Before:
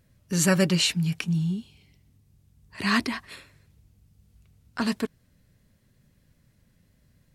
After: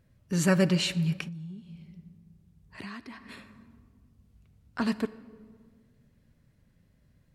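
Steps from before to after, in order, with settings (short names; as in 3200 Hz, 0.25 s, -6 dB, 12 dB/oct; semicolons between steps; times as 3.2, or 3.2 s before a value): reverb RT60 1.8 s, pre-delay 34 ms, DRR 16 dB; 1.27–3.29 compressor 8:1, threshold -37 dBFS, peak gain reduction 18 dB; high shelf 3300 Hz -8.5 dB; gain -1.5 dB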